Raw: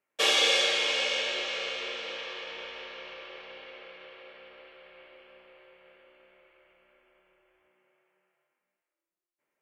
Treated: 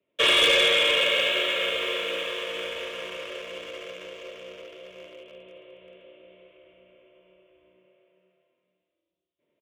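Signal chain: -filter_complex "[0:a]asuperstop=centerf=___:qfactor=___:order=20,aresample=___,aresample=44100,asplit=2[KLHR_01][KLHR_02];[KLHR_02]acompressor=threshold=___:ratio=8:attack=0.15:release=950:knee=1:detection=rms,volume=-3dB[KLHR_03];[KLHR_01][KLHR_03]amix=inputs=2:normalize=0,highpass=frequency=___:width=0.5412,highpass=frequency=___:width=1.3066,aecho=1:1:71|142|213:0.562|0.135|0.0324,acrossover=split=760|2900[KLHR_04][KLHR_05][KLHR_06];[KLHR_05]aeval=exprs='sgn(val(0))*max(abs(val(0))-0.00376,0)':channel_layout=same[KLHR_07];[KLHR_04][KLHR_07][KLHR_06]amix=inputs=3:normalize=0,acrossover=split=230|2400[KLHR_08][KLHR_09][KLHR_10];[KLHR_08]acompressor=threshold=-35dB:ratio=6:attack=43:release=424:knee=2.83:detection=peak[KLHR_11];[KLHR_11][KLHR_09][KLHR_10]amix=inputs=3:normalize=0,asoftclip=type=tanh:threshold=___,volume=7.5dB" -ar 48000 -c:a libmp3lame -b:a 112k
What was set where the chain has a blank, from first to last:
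810, 5.1, 8000, -42dB, 50, 50, -20.5dB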